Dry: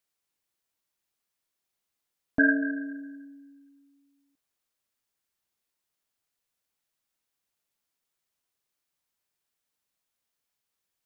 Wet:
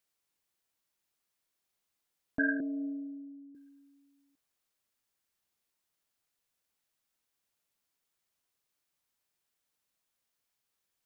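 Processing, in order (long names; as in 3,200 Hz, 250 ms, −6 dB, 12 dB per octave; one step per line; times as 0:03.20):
0:02.60–0:03.55: Butterworth low-pass 700 Hz 36 dB per octave
in parallel at −2 dB: compressor whose output falls as the input rises −35 dBFS, ratio −1
on the sum: level −8.5 dB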